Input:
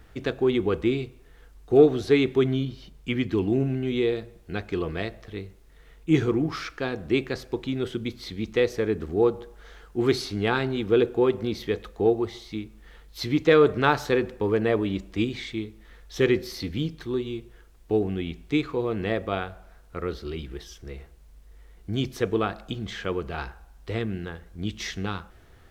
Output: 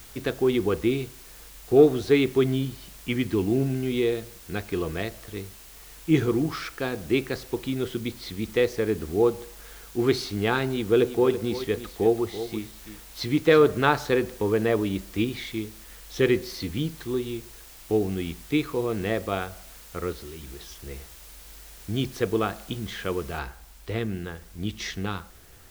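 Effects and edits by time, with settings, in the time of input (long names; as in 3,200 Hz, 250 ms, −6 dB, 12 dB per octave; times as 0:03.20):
0:10.65–0:13.66: single-tap delay 333 ms −12 dB
0:20.12–0:20.60: downward compressor, threshold −37 dBFS
0:23.39: noise floor change −48 dB −55 dB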